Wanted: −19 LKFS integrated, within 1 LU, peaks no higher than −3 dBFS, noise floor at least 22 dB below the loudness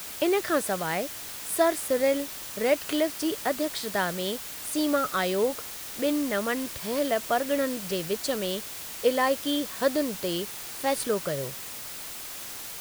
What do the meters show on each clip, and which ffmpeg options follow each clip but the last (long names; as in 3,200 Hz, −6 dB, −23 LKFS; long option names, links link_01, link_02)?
background noise floor −39 dBFS; target noise floor −50 dBFS; integrated loudness −28.0 LKFS; sample peak −10.5 dBFS; target loudness −19.0 LKFS
→ -af "afftdn=noise_reduction=11:noise_floor=-39"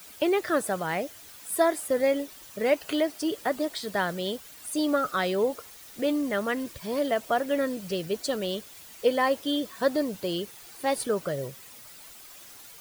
background noise floor −48 dBFS; target noise floor −50 dBFS
→ -af "afftdn=noise_reduction=6:noise_floor=-48"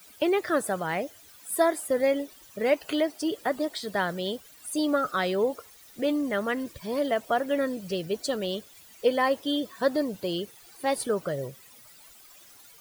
background noise floor −53 dBFS; integrated loudness −28.0 LKFS; sample peak −10.5 dBFS; target loudness −19.0 LKFS
→ -af "volume=9dB,alimiter=limit=-3dB:level=0:latency=1"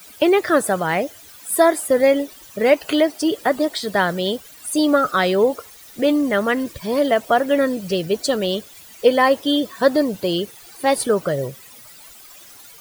integrated loudness −19.5 LKFS; sample peak −3.0 dBFS; background noise floor −44 dBFS